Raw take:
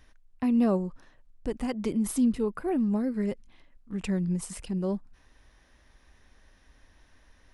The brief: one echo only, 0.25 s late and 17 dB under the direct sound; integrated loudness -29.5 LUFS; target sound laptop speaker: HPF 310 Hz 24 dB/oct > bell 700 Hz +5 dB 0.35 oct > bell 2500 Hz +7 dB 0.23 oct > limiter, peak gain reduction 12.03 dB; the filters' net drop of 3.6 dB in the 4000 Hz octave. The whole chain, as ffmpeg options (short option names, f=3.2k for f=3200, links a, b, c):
-af "highpass=f=310:w=0.5412,highpass=f=310:w=1.3066,equalizer=f=700:t=o:w=0.35:g=5,equalizer=f=2.5k:t=o:w=0.23:g=7,equalizer=f=4k:t=o:g=-7,aecho=1:1:250:0.141,volume=9.5dB,alimiter=limit=-19dB:level=0:latency=1"